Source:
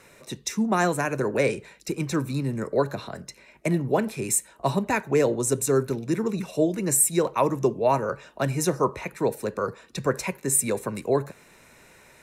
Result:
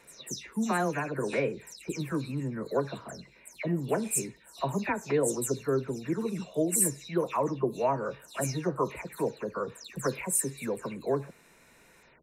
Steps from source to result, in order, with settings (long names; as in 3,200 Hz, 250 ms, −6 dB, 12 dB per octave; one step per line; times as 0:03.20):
every frequency bin delayed by itself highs early, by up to 199 ms
level −5.5 dB